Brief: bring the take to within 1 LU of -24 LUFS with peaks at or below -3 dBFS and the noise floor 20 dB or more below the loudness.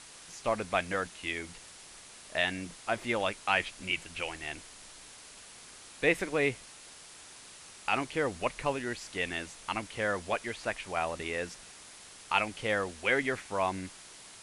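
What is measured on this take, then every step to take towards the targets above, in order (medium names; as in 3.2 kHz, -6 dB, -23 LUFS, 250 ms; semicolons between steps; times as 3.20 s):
noise floor -51 dBFS; noise floor target -53 dBFS; loudness -32.5 LUFS; peak level -10.5 dBFS; loudness target -24.0 LUFS
-> noise reduction 6 dB, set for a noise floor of -51 dBFS; trim +8.5 dB; peak limiter -3 dBFS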